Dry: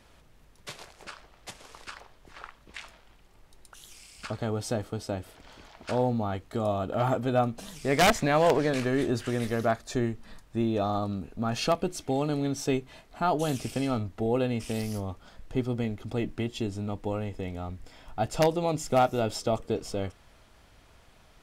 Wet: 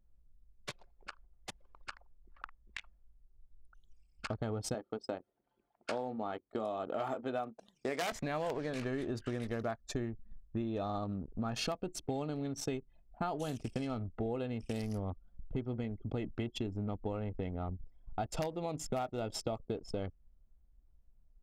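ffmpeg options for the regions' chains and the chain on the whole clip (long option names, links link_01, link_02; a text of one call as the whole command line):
ffmpeg -i in.wav -filter_complex "[0:a]asettb=1/sr,asplit=3[link_01][link_02][link_03];[link_01]atrim=end=4.744[link_04];[link_02]atrim=start=4.74:end=8.12,asetpts=PTS-STARTPTS,afade=type=in:duration=0.004:curve=qsin,afade=type=out:start_time=3.376:duration=0.004:curve=qsin,highpass=270,asplit=2[link_05][link_06];[link_06]adelay=23,volume=-13dB[link_07];[link_05][link_07]amix=inputs=2:normalize=0,atrim=end_sample=149058[link_08];[link_03]atrim=start=8.116[link_09];[link_04][link_08]acrossfade=duration=0.004:curve1=hsin:curve2=qsin[link_10];[link_10][link_09]acrossfade=duration=0.004:curve1=qsin:curve2=hsin,anlmdn=1.58,acompressor=threshold=-33dB:ratio=10" out.wav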